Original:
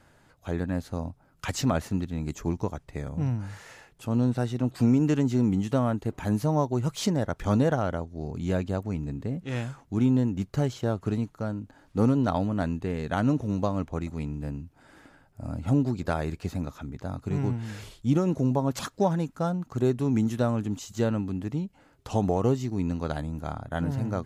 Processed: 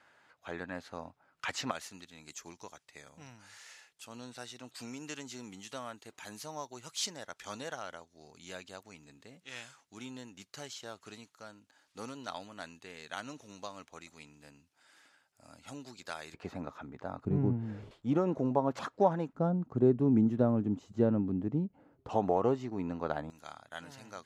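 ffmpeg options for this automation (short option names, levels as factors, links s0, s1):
-af "asetnsamples=n=441:p=0,asendcmd='1.71 bandpass f 5500;16.34 bandpass f 980;17.25 bandpass f 270;17.91 bandpass f 770;19.33 bandpass f 310;22.09 bandpass f 870;23.3 bandpass f 5000',bandpass=f=1900:t=q:w=0.64:csg=0"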